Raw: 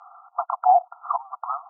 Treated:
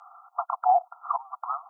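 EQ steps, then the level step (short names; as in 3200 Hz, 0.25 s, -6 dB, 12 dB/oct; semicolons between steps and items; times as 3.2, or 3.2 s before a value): tilt +3 dB/oct; -3.0 dB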